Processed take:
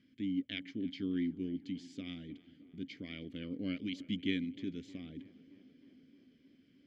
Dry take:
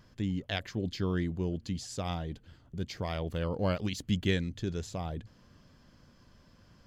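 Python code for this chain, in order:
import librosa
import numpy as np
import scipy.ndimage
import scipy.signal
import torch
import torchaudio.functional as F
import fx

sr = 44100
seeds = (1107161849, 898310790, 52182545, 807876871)

y = fx.vowel_filter(x, sr, vowel='i')
y = fx.echo_tape(y, sr, ms=310, feedback_pct=81, wet_db=-18.0, lp_hz=2300.0, drive_db=27.0, wow_cents=10)
y = F.gain(torch.from_numpy(y), 6.0).numpy()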